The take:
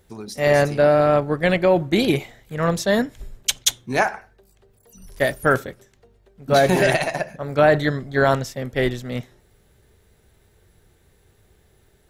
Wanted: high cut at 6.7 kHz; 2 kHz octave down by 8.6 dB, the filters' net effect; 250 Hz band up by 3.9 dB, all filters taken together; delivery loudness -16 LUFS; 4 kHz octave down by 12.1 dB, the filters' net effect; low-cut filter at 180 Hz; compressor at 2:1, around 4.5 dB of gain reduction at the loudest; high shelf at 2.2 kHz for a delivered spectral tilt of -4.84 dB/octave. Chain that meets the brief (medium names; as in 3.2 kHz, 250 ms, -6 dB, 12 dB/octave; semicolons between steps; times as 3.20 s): high-pass 180 Hz; low-pass 6.7 kHz; peaking EQ 250 Hz +7 dB; peaking EQ 2 kHz -7.5 dB; treble shelf 2.2 kHz -4.5 dB; peaking EQ 4 kHz -8 dB; compression 2:1, threshold -19 dBFS; trim +7.5 dB